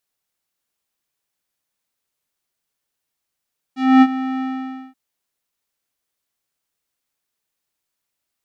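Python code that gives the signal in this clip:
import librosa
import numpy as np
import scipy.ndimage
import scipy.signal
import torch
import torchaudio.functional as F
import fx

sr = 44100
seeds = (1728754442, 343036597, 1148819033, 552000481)

y = fx.sub_voice(sr, note=60, wave='square', cutoff_hz=1800.0, q=0.87, env_oct=1.5, env_s=0.11, attack_ms=257.0, decay_s=0.05, sustain_db=-15, release_s=0.53, note_s=0.65, slope=12)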